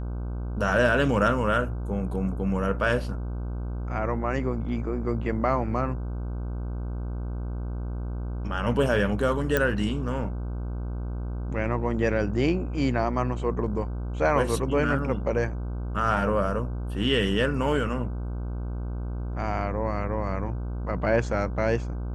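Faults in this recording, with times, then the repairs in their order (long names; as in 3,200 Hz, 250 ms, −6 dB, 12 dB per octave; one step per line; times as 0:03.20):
mains buzz 60 Hz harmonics 26 −31 dBFS
0:09.57: click −9 dBFS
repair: click removal
hum removal 60 Hz, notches 26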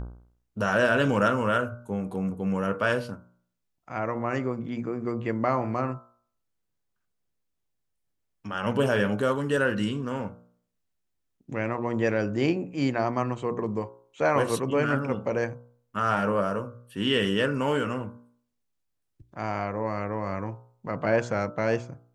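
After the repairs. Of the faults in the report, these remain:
0:09.57: click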